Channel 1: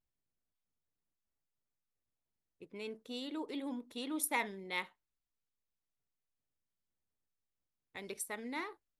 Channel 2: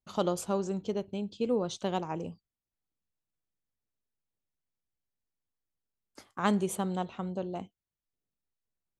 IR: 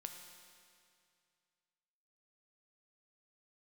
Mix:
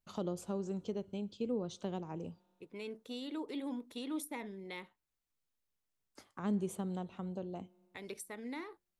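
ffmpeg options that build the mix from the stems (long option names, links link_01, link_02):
-filter_complex "[0:a]volume=1dB[link_01];[1:a]volume=-5.5dB,asplit=2[link_02][link_03];[link_03]volume=-18.5dB[link_04];[2:a]atrim=start_sample=2205[link_05];[link_04][link_05]afir=irnorm=-1:irlink=0[link_06];[link_01][link_02][link_06]amix=inputs=3:normalize=0,acrossover=split=450[link_07][link_08];[link_08]acompressor=threshold=-46dB:ratio=4[link_09];[link_07][link_09]amix=inputs=2:normalize=0"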